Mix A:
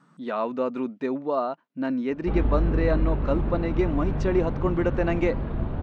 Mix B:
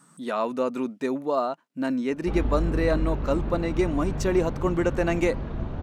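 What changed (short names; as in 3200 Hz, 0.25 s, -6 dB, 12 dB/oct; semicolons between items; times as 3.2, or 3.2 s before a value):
background -3.0 dB; master: remove air absorption 200 m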